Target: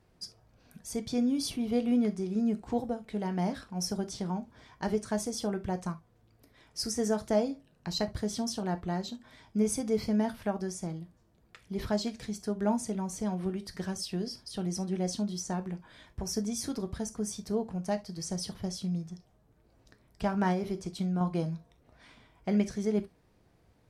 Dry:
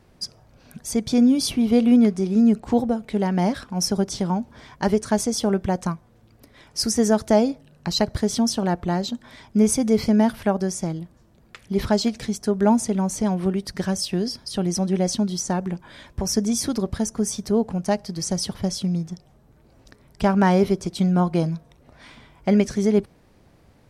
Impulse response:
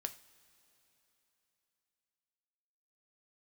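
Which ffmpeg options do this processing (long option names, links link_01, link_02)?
-filter_complex "[1:a]atrim=start_sample=2205,atrim=end_sample=3528[link_01];[0:a][link_01]afir=irnorm=-1:irlink=0,asettb=1/sr,asplit=3[link_02][link_03][link_04];[link_02]atrim=end=20.524[link_05];[link_03]atrim=start=20.52:end=21.21,asetpts=PTS-STARTPTS,afade=type=in:duration=0.004:curve=qsin,afade=type=out:start_time=0.686:duration=0.004:curve=qsin,acompressor=threshold=-19dB:ratio=6[link_06];[link_04]atrim=start=21.206[link_07];[link_05][link_06]acrossfade=duration=0.004:curve1=hsin:curve2=qsin[link_08];[link_08][link_07]acrossfade=duration=0.004:curve1=qsin:curve2=hsin,volume=-8.5dB"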